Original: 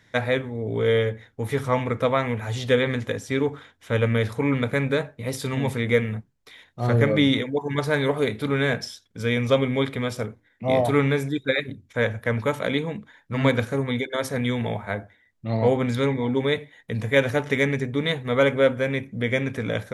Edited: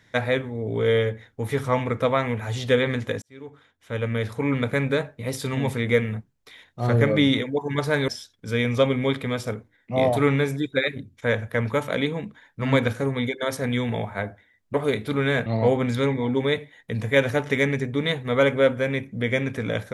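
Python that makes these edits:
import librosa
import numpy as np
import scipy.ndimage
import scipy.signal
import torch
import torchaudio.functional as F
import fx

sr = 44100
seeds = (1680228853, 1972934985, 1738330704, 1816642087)

y = fx.edit(x, sr, fx.fade_in_span(start_s=3.22, length_s=1.45),
    fx.move(start_s=8.08, length_s=0.72, to_s=15.46), tone=tone)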